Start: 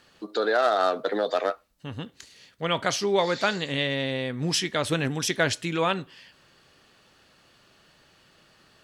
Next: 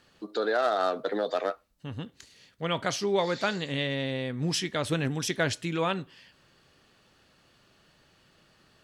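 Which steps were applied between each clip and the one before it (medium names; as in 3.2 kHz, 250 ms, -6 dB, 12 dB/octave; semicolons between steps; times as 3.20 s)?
bass shelf 320 Hz +4.5 dB; trim -4.5 dB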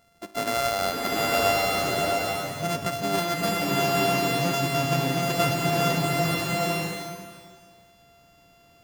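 sorted samples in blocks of 64 samples; swelling reverb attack 920 ms, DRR -4.5 dB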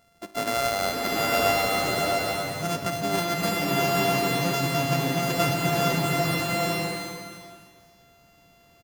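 feedback delay 253 ms, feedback 30%, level -10 dB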